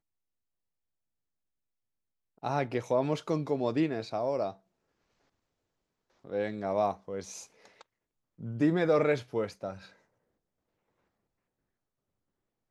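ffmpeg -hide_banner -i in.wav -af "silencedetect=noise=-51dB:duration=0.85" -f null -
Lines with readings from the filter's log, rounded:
silence_start: 0.00
silence_end: 2.38 | silence_duration: 2.38
silence_start: 4.56
silence_end: 6.24 | silence_duration: 1.68
silence_start: 9.92
silence_end: 12.70 | silence_duration: 2.78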